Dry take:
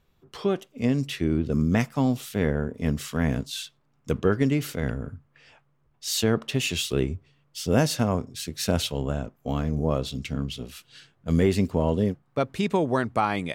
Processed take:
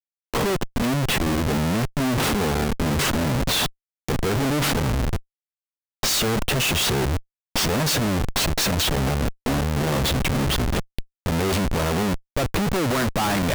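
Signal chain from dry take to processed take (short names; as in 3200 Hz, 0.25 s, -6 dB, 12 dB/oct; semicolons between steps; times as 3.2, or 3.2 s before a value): Schmitt trigger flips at -37 dBFS; gain +5 dB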